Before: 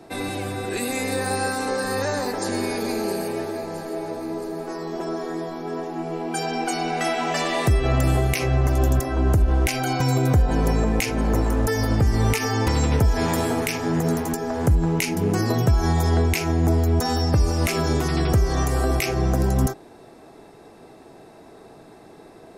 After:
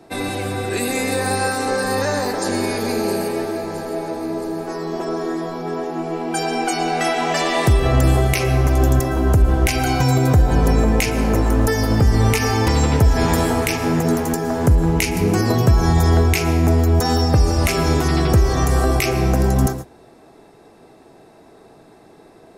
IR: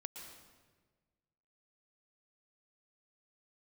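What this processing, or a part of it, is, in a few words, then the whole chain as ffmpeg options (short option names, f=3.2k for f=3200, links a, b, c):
keyed gated reverb: -filter_complex "[0:a]asplit=3[a][b][c];[1:a]atrim=start_sample=2205[d];[b][d]afir=irnorm=-1:irlink=0[e];[c]apad=whole_len=995575[f];[e][f]sidechaingate=range=-33dB:threshold=-35dB:ratio=16:detection=peak,volume=3dB[g];[a][g]amix=inputs=2:normalize=0,volume=-1dB"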